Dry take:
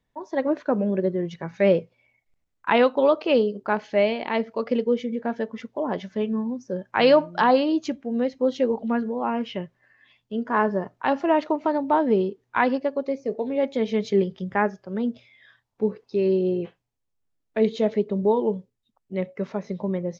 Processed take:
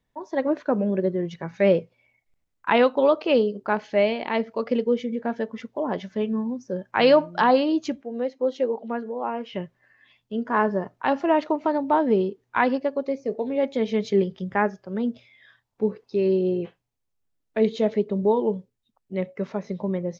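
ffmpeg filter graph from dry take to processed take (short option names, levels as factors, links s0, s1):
-filter_complex "[0:a]asettb=1/sr,asplit=3[s0][s1][s2];[s0]atrim=end=8.024[s3];[s1]atrim=start=8.02:end=9.53,asetpts=PTS-STARTPTS,afade=t=in:d=0.004:c=qsin,afade=t=out:st=1.506:d=0.004:c=qsin,highpass=460,tiltshelf=f=660:g=5.5[s4];[s2]atrim=start=9.526[s5];[s3][s4]acrossfade=d=0.004:c1=hsin:c2=qsin[s6];[s6][s5]acrossfade=d=0.004:c1=qsin:c2=hsin"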